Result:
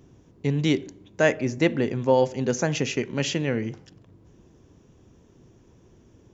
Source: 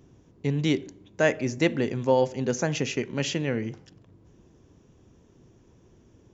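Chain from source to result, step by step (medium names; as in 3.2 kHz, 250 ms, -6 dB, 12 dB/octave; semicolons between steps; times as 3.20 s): 1.34–2.14 s: treble shelf 4.1 kHz -6 dB; trim +2 dB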